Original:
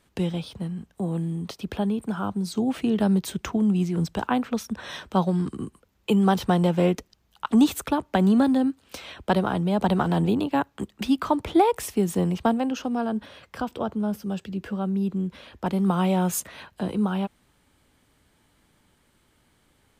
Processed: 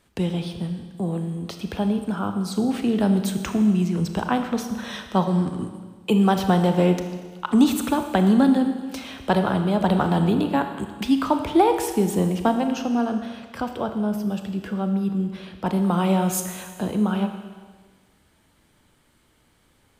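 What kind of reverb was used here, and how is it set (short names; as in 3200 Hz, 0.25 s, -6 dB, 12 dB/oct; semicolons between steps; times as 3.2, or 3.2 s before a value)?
Schroeder reverb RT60 1.5 s, combs from 26 ms, DRR 6.5 dB; gain +1.5 dB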